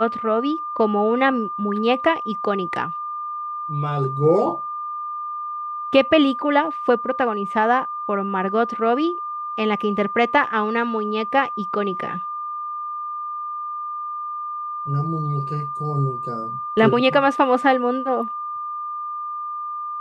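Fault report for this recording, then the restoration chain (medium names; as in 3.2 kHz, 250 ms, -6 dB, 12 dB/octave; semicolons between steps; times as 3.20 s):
whine 1.2 kHz -26 dBFS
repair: band-stop 1.2 kHz, Q 30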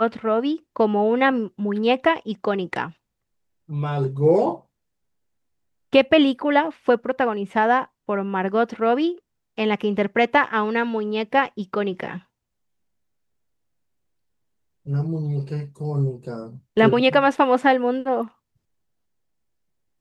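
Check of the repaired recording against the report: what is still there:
nothing left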